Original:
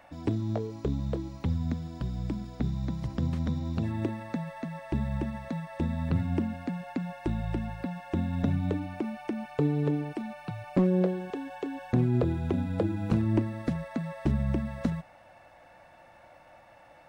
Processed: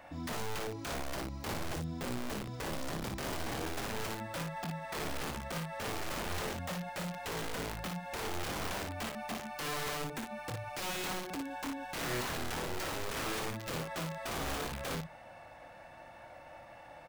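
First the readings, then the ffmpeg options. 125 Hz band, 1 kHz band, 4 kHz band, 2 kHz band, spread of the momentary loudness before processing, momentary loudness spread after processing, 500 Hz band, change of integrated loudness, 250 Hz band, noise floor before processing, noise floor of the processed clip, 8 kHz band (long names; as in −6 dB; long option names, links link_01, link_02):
−13.0 dB, +2.0 dB, +10.5 dB, +5.5 dB, 9 LU, 8 LU, −5.5 dB, −7.0 dB, −12.5 dB, −55 dBFS, −53 dBFS, can't be measured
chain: -filter_complex "[0:a]aeval=exprs='(mod(28.2*val(0)+1,2)-1)/28.2':channel_layout=same,alimiter=level_in=11dB:limit=-24dB:level=0:latency=1:release=87,volume=-11dB,asplit=2[link_01][link_02];[link_02]aecho=0:1:25|57:0.376|0.562[link_03];[link_01][link_03]amix=inputs=2:normalize=0,volume=1dB"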